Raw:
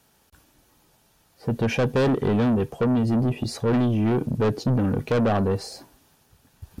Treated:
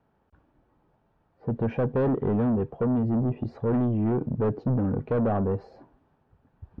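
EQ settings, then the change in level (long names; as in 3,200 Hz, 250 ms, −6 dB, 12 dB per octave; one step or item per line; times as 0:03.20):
low-pass filter 1,200 Hz 12 dB per octave
high-frequency loss of the air 54 metres
−3.0 dB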